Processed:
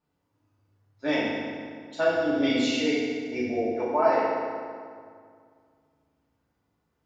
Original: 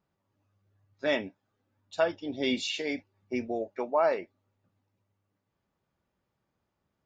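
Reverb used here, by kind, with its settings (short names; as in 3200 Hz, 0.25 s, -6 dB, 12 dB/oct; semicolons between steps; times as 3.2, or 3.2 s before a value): FDN reverb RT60 2.1 s, low-frequency decay 1.2×, high-frequency decay 0.7×, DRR -8.5 dB; gain -4.5 dB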